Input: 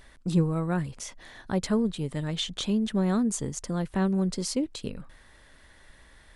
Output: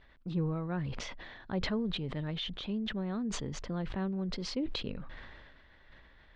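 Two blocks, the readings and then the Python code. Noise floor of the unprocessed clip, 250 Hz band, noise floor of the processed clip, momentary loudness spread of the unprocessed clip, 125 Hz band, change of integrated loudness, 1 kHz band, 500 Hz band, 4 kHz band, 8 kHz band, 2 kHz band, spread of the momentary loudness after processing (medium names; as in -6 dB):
-55 dBFS, -8.0 dB, -60 dBFS, 13 LU, -7.0 dB, -8.0 dB, -7.5 dB, -8.0 dB, -3.5 dB, -13.0 dB, -2.5 dB, 11 LU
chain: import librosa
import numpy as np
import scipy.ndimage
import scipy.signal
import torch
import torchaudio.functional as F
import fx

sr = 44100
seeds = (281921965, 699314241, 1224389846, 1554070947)

y = fx.rider(x, sr, range_db=10, speed_s=0.5)
y = scipy.signal.sosfilt(scipy.signal.butter(4, 3900.0, 'lowpass', fs=sr, output='sos'), y)
y = fx.sustainer(y, sr, db_per_s=30.0)
y = F.gain(torch.from_numpy(y), -8.5).numpy()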